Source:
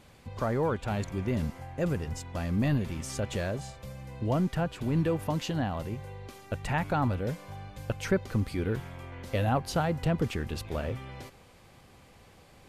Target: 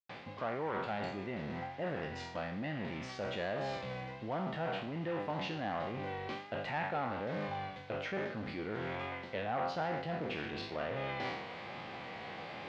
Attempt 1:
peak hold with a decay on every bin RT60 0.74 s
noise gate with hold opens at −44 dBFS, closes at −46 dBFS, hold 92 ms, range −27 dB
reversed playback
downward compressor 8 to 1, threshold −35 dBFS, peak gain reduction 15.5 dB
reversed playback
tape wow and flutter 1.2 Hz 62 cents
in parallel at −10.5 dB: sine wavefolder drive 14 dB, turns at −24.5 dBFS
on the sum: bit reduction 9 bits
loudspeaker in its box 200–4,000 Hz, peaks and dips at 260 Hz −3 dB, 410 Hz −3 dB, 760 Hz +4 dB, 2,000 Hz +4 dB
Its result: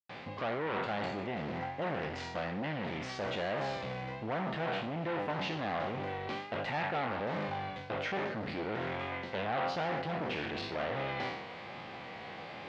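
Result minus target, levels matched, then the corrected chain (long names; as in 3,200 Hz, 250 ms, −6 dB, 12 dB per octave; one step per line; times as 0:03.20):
downward compressor: peak gain reduction −5.5 dB
peak hold with a decay on every bin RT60 0.74 s
noise gate with hold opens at −44 dBFS, closes at −46 dBFS, hold 92 ms, range −27 dB
reversed playback
downward compressor 8 to 1, threshold −41.5 dBFS, peak gain reduction 21 dB
reversed playback
tape wow and flutter 1.2 Hz 62 cents
in parallel at −10.5 dB: sine wavefolder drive 14 dB, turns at −24.5 dBFS
on the sum: bit reduction 9 bits
loudspeaker in its box 200–4,000 Hz, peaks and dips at 260 Hz −3 dB, 410 Hz −3 dB, 760 Hz +4 dB, 2,000 Hz +4 dB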